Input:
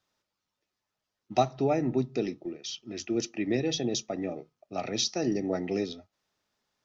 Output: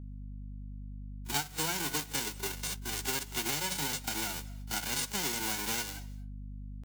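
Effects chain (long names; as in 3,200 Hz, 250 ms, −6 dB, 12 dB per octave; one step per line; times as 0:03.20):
spectral envelope flattened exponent 0.1
noise gate −44 dBFS, range −19 dB
pitch shifter +2.5 semitones
echo ahead of the sound 36 ms −19.5 dB
mains hum 50 Hz, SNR 14 dB
downward compressor 4 to 1, threshold −35 dBFS, peak gain reduction 14 dB
on a send at −20.5 dB: convolution reverb RT60 0.35 s, pre-delay 174 ms
on the sum: level +3.5 dB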